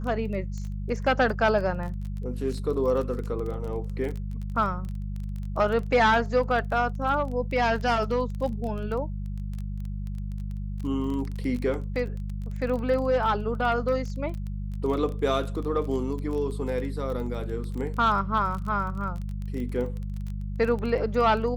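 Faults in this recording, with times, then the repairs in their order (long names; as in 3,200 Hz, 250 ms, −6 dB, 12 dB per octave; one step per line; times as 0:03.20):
surface crackle 20 per second −32 dBFS
mains hum 50 Hz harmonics 4 −32 dBFS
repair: click removal
hum removal 50 Hz, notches 4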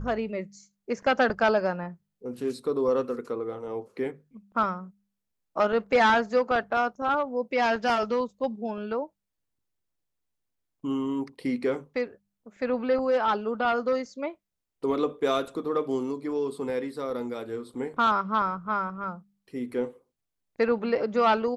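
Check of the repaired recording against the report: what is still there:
none of them is left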